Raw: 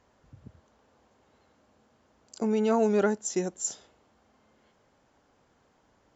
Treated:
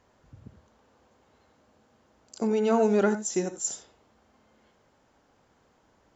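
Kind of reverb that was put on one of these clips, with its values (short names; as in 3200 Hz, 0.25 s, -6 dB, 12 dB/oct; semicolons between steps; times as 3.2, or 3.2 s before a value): non-linear reverb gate 0.11 s rising, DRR 10 dB; gain +1 dB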